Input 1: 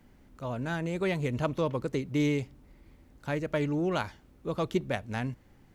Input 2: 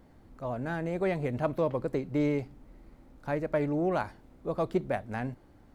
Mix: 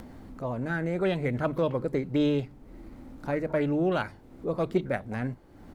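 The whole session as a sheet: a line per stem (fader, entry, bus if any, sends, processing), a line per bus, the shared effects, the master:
−6.0 dB, 0.00 s, no send, spectrum averaged block by block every 50 ms; notch comb filter 600 Hz; envelope-controlled low-pass 260–3,600 Hz up, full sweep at −26 dBFS
+1.0 dB, 0.7 ms, no send, no processing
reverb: not used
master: mains-hum notches 50/100/150 Hz; upward compression, threshold −36 dBFS

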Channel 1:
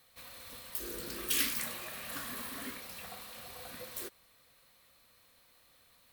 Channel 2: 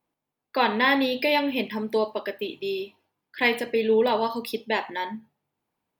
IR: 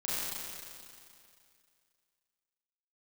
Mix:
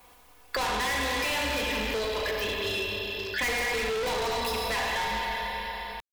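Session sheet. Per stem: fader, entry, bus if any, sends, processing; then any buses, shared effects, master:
−5.0 dB, 1.10 s, no send, downward compressor 6 to 1, threshold −41 dBFS, peak gain reduction 14.5 dB; bit reduction 6 bits; low-pass with resonance 5,000 Hz
+2.5 dB, 0.00 s, send −4 dB, sub-octave generator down 2 octaves, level −5 dB; comb filter 4.1 ms, depth 66%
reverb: on, RT60 2.4 s, pre-delay 30 ms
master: parametric band 230 Hz −14.5 dB 1.9 octaves; soft clipping −27 dBFS, distortion −3 dB; multiband upward and downward compressor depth 70%

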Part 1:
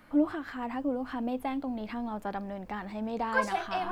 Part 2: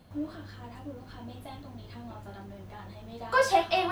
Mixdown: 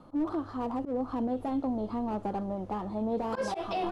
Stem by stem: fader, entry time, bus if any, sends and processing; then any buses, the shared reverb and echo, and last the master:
+2.0 dB, 0.00 s, no send, Chebyshev low-pass filter 1,300 Hz, order 6; parametric band 300 Hz −5 dB 1.9 octaves; slew-rate limiting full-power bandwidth 12 Hz
−6.0 dB, 1 ms, polarity flipped, no send, elliptic low-pass filter 11,000 Hz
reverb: not used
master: parametric band 370 Hz +9 dB 1.9 octaves; volume swells 123 ms; brickwall limiter −23.5 dBFS, peak gain reduction 7 dB

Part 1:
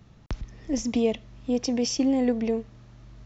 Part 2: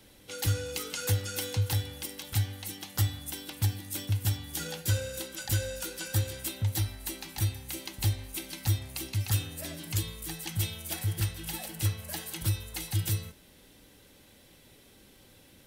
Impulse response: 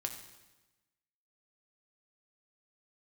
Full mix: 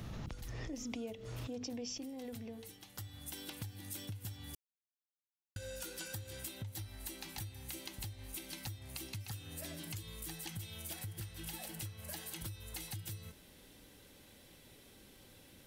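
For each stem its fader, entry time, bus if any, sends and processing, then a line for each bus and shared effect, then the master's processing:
0:01.89 −6 dB → 0:02.10 −18.5 dB, 0.00 s, no send, mains-hum notches 50/100/150/200/250/300/350/400/450 Hz; background raised ahead of every attack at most 38 dB per second
−2.5 dB, 0.00 s, muted 0:04.55–0:05.56, no send, downward compressor, threshold −31 dBFS, peak gain reduction 9.5 dB; automatic ducking −12 dB, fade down 0.40 s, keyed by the first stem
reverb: not used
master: downward compressor 4 to 1, threshold −42 dBFS, peak gain reduction 14.5 dB

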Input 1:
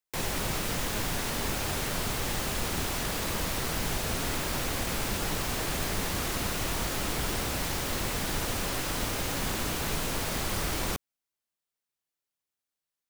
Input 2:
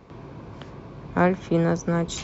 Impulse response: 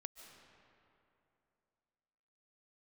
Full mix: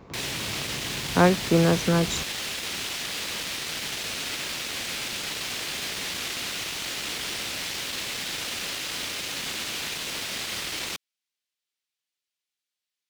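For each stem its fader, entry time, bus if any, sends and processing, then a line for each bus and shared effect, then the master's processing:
−4.5 dB, 0.00 s, no send, wavefolder on the positive side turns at −28 dBFS; meter weighting curve D
+1.5 dB, 0.00 s, no send, no processing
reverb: not used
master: no processing

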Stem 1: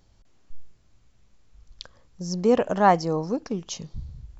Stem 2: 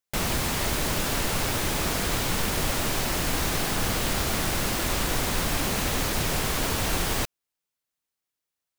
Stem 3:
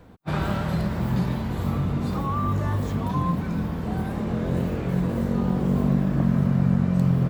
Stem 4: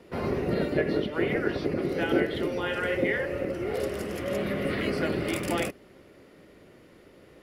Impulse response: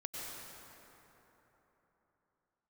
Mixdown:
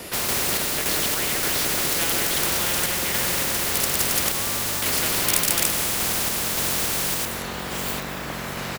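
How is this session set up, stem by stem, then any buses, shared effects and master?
muted
−15.5 dB, 0.00 s, no send, no processing
−2.0 dB, 2.10 s, no send, no processing
+0.5 dB, 0.00 s, muted 0:04.32–0:04.82, send −4.5 dB, high-shelf EQ 5,400 Hz +12 dB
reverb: on, RT60 3.8 s, pre-delay 88 ms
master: high-shelf EQ 4,700 Hz +8.5 dB; sample-and-hold tremolo; every bin compressed towards the loudest bin 4 to 1

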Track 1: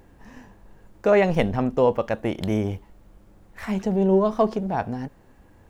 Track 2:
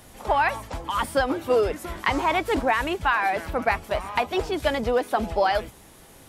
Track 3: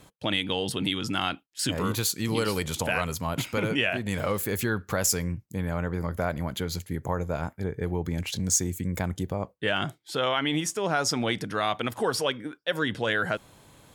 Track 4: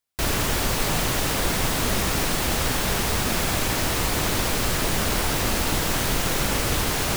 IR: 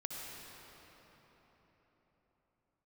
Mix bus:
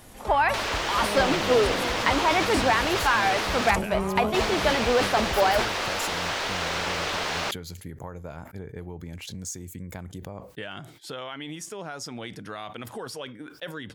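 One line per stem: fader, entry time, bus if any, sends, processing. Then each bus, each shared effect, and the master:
−9.0 dB, 0.00 s, no send, spectrum smeared in time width 289 ms
−0.5 dB, 0.00 s, no send, no processing
−3.5 dB, 0.95 s, no send, downward compressor 3 to 1, threshold −32 dBFS, peak gain reduction 10 dB
−0.5 dB, 0.35 s, muted 0:03.71–0:04.34, no send, three-way crossover with the lows and the highs turned down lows −21 dB, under 410 Hz, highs −24 dB, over 5,800 Hz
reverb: not used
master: level that may fall only so fast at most 82 dB per second

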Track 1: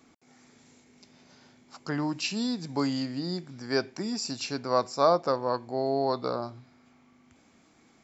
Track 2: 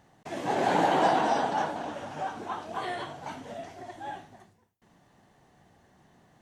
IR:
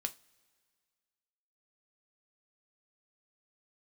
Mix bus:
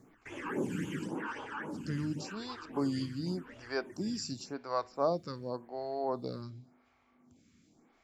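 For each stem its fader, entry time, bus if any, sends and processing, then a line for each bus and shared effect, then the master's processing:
−6.0 dB, 0.00 s, no send, low-shelf EQ 220 Hz +7 dB
+2.5 dB, 0.00 s, no send, downward compressor, threshold −27 dBFS, peak gain reduction 8.5 dB; phaser with its sweep stopped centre 1,700 Hz, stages 4; all-pass phaser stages 12, 3.7 Hz, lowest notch 590–1,800 Hz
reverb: not used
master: speech leveller within 4 dB 2 s; phaser with staggered stages 0.9 Hz

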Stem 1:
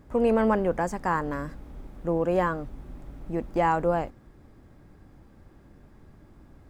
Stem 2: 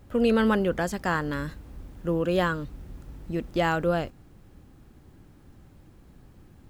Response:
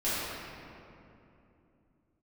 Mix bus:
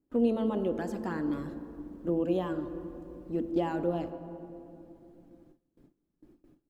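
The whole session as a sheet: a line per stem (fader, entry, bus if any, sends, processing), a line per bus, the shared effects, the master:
+2.0 dB, 0.00 s, send −15.5 dB, resonant band-pass 310 Hz, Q 3.2; reverb reduction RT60 1.2 s
−11.0 dB, 0.4 ms, polarity flipped, send −22 dB, brickwall limiter −17 dBFS, peak gain reduction 6.5 dB; flanger swept by the level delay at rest 6.7 ms, full sweep at −21.5 dBFS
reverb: on, RT60 2.8 s, pre-delay 4 ms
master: noise gate with hold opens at −47 dBFS

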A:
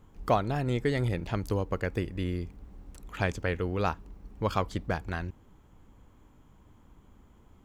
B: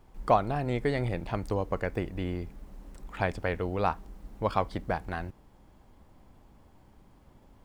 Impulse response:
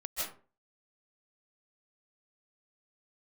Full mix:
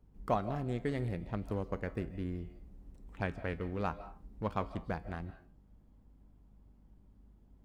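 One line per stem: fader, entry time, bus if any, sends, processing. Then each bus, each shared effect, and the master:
−4.5 dB, 0.00 s, no send, adaptive Wiener filter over 41 samples
−17.0 dB, 0.00 s, send −4 dB, mains hum 50 Hz, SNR 17 dB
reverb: on, RT60 0.40 s, pre-delay 115 ms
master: parametric band 210 Hz +5 dB 0.33 octaves; tuned comb filter 55 Hz, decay 0.31 s, harmonics odd, mix 50%

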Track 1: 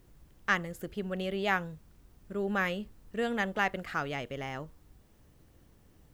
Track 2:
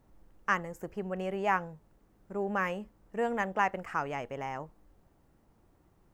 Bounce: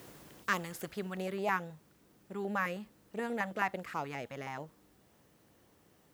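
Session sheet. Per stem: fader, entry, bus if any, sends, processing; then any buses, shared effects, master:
−7.5 dB, 0.00 s, no send, every bin compressed towards the loudest bin 4 to 1; automatic ducking −15 dB, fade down 1.65 s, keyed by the second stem
−2.0 dB, 0.00 s, no send, Butterworth low-pass 2,900 Hz 48 dB per octave; notch on a step sequencer 9.4 Hz 390–1,700 Hz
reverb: not used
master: high-pass filter 96 Hz 12 dB per octave

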